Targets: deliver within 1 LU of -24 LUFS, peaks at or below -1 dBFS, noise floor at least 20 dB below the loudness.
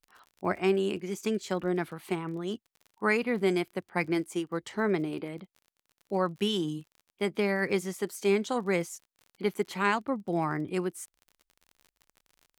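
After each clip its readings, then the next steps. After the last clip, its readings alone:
tick rate 40 per s; loudness -30.5 LUFS; peak level -13.5 dBFS; loudness target -24.0 LUFS
-> de-click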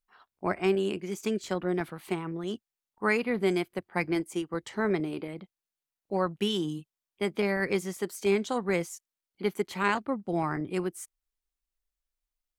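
tick rate 0 per s; loudness -30.5 LUFS; peak level -13.5 dBFS; loudness target -24.0 LUFS
-> trim +6.5 dB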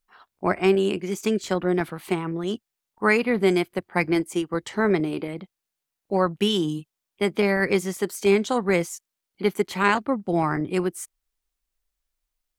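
loudness -24.0 LUFS; peak level -7.0 dBFS; noise floor -85 dBFS

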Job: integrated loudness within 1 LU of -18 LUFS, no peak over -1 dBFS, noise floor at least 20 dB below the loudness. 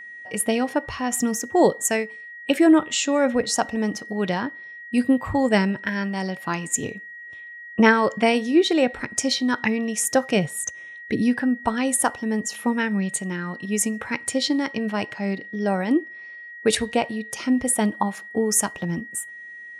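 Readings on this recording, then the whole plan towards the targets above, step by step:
steady tone 1.9 kHz; tone level -37 dBFS; loudness -23.0 LUFS; peak level -2.5 dBFS; loudness target -18.0 LUFS
-> band-stop 1.9 kHz, Q 30; trim +5 dB; peak limiter -1 dBFS

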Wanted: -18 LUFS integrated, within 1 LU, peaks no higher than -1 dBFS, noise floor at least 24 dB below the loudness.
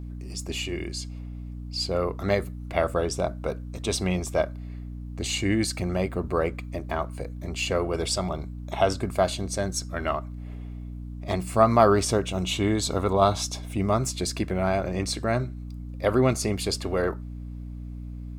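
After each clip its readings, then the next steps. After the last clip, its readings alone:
hum 60 Hz; highest harmonic 300 Hz; hum level -34 dBFS; loudness -26.5 LUFS; peak level -4.5 dBFS; loudness target -18.0 LUFS
-> hum notches 60/120/180/240/300 Hz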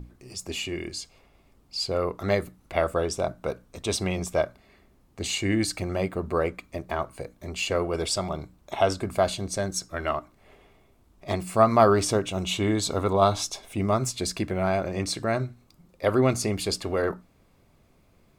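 hum not found; loudness -27.0 LUFS; peak level -5.0 dBFS; loudness target -18.0 LUFS
-> trim +9 dB; peak limiter -1 dBFS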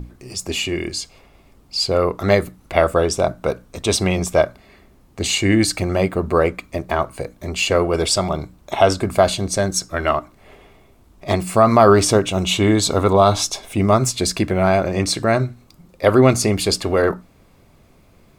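loudness -18.5 LUFS; peak level -1.0 dBFS; noise floor -52 dBFS

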